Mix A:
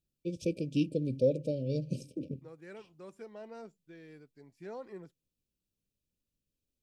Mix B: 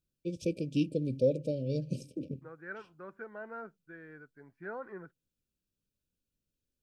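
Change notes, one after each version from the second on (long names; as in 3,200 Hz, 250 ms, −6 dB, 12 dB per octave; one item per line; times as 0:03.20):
second voice: add low-pass with resonance 1,500 Hz, resonance Q 6.7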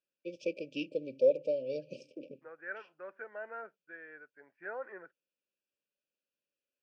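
master: add loudspeaker in its box 490–5,000 Hz, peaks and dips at 570 Hz +7 dB, 1,100 Hz −4 dB, 1,800 Hz +5 dB, 2,600 Hz +6 dB, 3,900 Hz −8 dB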